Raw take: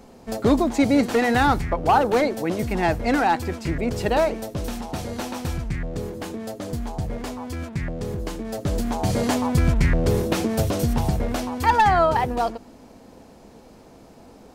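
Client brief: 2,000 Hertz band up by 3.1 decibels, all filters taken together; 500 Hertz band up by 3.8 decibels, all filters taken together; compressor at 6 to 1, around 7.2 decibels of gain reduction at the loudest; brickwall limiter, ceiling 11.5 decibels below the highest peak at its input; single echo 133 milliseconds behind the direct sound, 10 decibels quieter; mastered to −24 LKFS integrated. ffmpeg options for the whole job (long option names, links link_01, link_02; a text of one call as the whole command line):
ffmpeg -i in.wav -af "equalizer=frequency=500:width_type=o:gain=4.5,equalizer=frequency=2000:width_type=o:gain=3.5,acompressor=threshold=-19dB:ratio=6,alimiter=limit=-20.5dB:level=0:latency=1,aecho=1:1:133:0.316,volume=5dB" out.wav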